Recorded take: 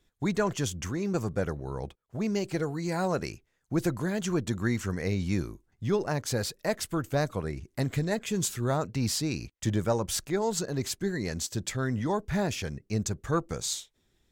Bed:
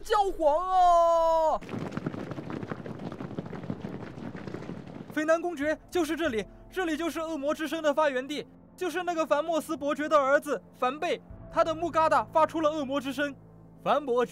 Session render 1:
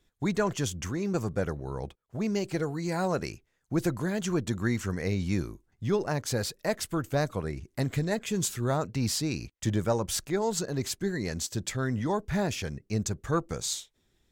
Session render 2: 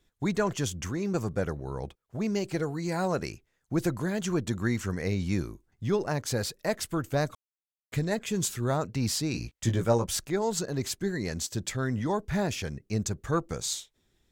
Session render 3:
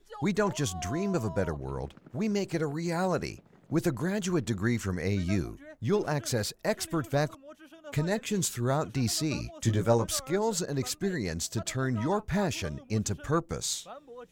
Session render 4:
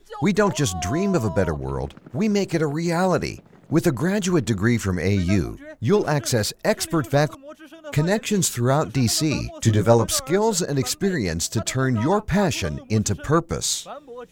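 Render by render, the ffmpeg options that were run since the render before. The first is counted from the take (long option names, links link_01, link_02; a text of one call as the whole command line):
ffmpeg -i in.wav -af anull out.wav
ffmpeg -i in.wav -filter_complex "[0:a]asettb=1/sr,asplit=3[link_01][link_02][link_03];[link_01]atrim=end=9.324[link_04];[link_02]atrim=start=9.32:end=10.06,asetpts=PTS-STARTPTS,afade=type=in:duration=0.004:curve=qsin,afade=type=out:start_time=0.736:duration=0.004:curve=qsin,asplit=2[link_05][link_06];[link_06]adelay=17,volume=-4.5dB[link_07];[link_05][link_07]amix=inputs=2:normalize=0,atrim=end_sample=32634[link_08];[link_03]atrim=start=10.056[link_09];[link_04][link_08]acrossfade=duration=0.004:curve1=hsin:curve2=qsin[link_10];[link_10][link_09]acrossfade=duration=0.004:curve1=qsin:curve2=hsin,asplit=3[link_11][link_12][link_13];[link_11]atrim=end=7.35,asetpts=PTS-STARTPTS,afade=type=out:start_time=7.346:duration=0.004:curve=hsin[link_14];[link_12]atrim=start=7.35:end=7.92,asetpts=PTS-STARTPTS,volume=0[link_15];[link_13]atrim=start=7.92,asetpts=PTS-STARTPTS,afade=type=in:duration=0.004:curve=hsin[link_16];[link_14][link_15][link_16]concat=n=3:v=0:a=1" out.wav
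ffmpeg -i in.wav -i bed.wav -filter_complex "[1:a]volume=-20dB[link_01];[0:a][link_01]amix=inputs=2:normalize=0" out.wav
ffmpeg -i in.wav -af "volume=8.5dB" out.wav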